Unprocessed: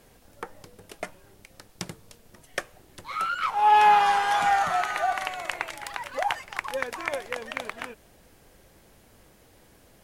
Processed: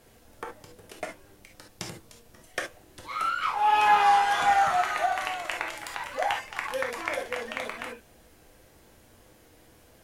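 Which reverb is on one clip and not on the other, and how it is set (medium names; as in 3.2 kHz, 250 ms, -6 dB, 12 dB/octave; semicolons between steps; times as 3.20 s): gated-style reverb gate 90 ms flat, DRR 1 dB; trim -2.5 dB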